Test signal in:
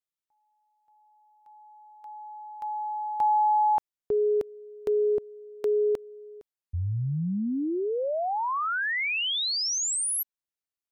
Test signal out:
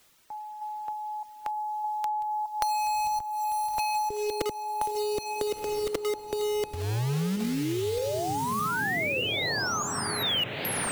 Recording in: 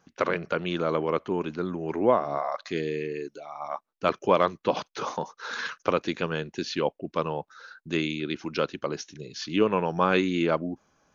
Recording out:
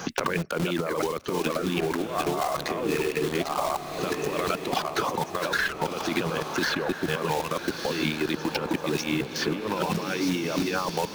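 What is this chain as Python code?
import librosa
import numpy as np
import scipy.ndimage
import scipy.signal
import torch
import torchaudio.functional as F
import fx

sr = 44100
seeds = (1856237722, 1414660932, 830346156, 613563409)

p1 = fx.reverse_delay(x, sr, ms=614, wet_db=-4.5)
p2 = fx.dereverb_blind(p1, sr, rt60_s=1.0)
p3 = fx.high_shelf(p2, sr, hz=5400.0, db=-3.5)
p4 = fx.quant_dither(p3, sr, seeds[0], bits=6, dither='none')
p5 = p3 + F.gain(torch.from_numpy(p4), -3.0).numpy()
p6 = fx.over_compress(p5, sr, threshold_db=-29.0, ratio=-1.0)
p7 = p6 + fx.echo_diffused(p6, sr, ms=1378, feedback_pct=46, wet_db=-10.5, dry=0)
y = fx.band_squash(p7, sr, depth_pct=100)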